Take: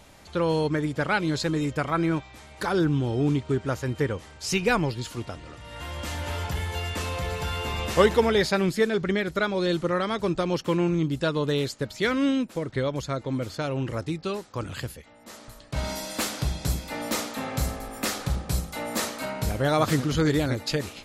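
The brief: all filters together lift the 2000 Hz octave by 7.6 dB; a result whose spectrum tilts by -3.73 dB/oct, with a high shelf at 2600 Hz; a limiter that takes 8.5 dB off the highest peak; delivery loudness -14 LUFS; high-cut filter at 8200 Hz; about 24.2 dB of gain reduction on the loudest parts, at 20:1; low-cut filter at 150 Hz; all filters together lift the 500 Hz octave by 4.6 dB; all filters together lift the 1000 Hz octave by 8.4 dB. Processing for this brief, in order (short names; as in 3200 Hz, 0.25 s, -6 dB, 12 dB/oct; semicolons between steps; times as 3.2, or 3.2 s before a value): HPF 150 Hz; LPF 8200 Hz; bell 500 Hz +3.5 dB; bell 1000 Hz +7.5 dB; bell 2000 Hz +4.5 dB; high shelf 2600 Hz +5.5 dB; compressor 20:1, threshold -32 dBFS; gain +23.5 dB; limiter -2.5 dBFS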